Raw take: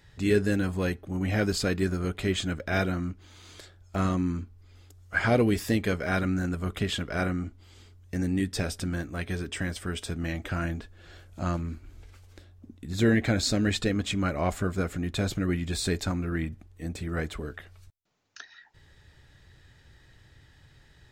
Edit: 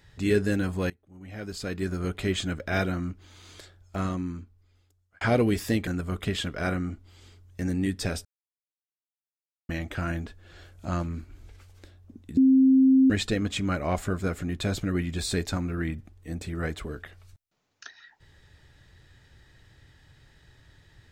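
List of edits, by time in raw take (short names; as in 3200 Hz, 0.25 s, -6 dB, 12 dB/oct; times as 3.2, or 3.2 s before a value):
0.9–2.05 fade in quadratic, from -22 dB
3.59–5.21 fade out
5.87–6.41 cut
8.79–10.23 mute
12.91–13.64 bleep 264 Hz -14.5 dBFS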